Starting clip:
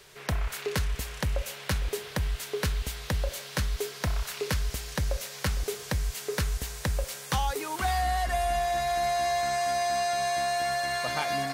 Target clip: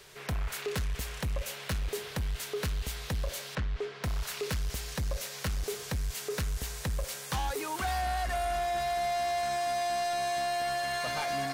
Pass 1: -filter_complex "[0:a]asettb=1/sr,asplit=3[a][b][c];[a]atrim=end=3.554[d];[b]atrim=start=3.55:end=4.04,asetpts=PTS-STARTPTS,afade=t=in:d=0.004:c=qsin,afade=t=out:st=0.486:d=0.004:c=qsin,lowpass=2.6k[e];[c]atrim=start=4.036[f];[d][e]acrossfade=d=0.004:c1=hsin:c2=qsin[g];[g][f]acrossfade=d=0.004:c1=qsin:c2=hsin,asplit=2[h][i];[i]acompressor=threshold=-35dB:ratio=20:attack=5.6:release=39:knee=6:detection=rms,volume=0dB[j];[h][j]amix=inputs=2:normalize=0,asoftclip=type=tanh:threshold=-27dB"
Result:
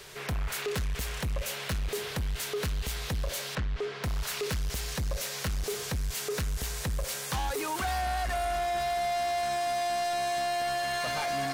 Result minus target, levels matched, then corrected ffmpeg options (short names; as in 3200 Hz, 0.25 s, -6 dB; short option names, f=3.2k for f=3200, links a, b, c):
compressor: peak gain reduction +13.5 dB
-filter_complex "[0:a]asettb=1/sr,asplit=3[a][b][c];[a]atrim=end=3.554[d];[b]atrim=start=3.55:end=4.04,asetpts=PTS-STARTPTS,afade=t=in:d=0.004:c=qsin,afade=t=out:st=0.486:d=0.004:c=qsin,lowpass=2.6k[e];[c]atrim=start=4.036[f];[d][e]acrossfade=d=0.004:c1=hsin:c2=qsin[g];[g][f]acrossfade=d=0.004:c1=qsin:c2=hsin,asoftclip=type=tanh:threshold=-27dB"